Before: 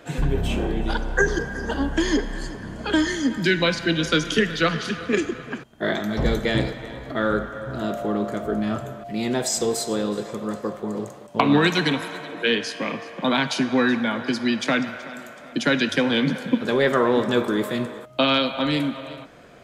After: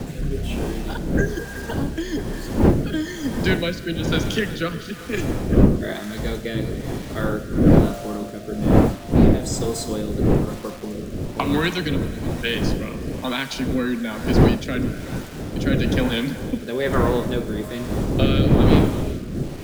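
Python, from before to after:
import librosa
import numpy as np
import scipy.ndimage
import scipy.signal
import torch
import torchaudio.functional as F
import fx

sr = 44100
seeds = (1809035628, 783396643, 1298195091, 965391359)

y = fx.dmg_wind(x, sr, seeds[0], corner_hz=290.0, level_db=-18.0)
y = fx.quant_dither(y, sr, seeds[1], bits=6, dither='none')
y = fx.rotary(y, sr, hz=1.1)
y = y * 10.0 ** (-2.0 / 20.0)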